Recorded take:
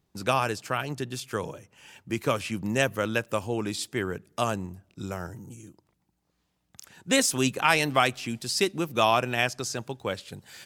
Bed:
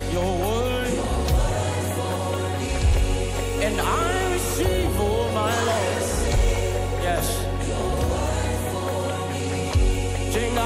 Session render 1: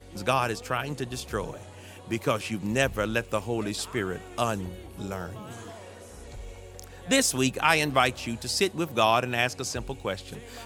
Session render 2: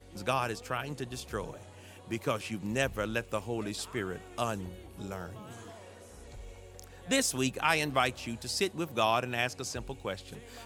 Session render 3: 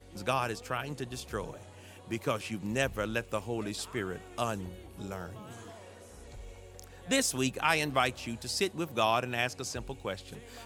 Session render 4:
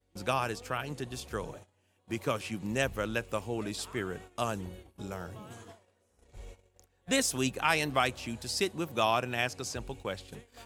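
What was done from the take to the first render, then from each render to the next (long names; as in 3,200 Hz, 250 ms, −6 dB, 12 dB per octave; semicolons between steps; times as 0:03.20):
mix in bed −21.5 dB
level −5.5 dB
no processing that can be heard
noise gate −46 dBFS, range −21 dB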